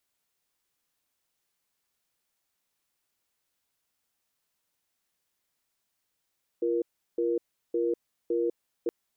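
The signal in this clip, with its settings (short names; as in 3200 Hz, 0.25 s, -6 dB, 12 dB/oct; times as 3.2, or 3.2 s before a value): cadence 345 Hz, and 472 Hz, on 0.20 s, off 0.36 s, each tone -27 dBFS 2.27 s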